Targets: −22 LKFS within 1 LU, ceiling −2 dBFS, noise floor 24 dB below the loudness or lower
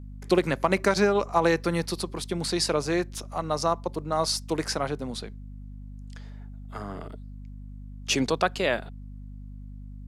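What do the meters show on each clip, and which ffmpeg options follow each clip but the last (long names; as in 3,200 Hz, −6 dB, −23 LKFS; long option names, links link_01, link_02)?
mains hum 50 Hz; hum harmonics up to 250 Hz; level of the hum −38 dBFS; integrated loudness −26.5 LKFS; sample peak −8.5 dBFS; target loudness −22.0 LKFS
→ -af "bandreject=frequency=50:width_type=h:width=6,bandreject=frequency=100:width_type=h:width=6,bandreject=frequency=150:width_type=h:width=6,bandreject=frequency=200:width_type=h:width=6,bandreject=frequency=250:width_type=h:width=6"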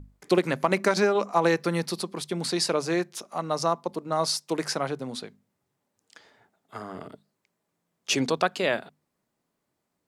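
mains hum none found; integrated loudness −26.5 LKFS; sample peak −8.5 dBFS; target loudness −22.0 LKFS
→ -af "volume=4.5dB"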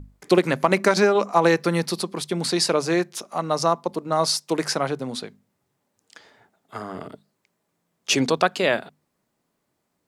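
integrated loudness −22.0 LKFS; sample peak −4.0 dBFS; background noise floor −75 dBFS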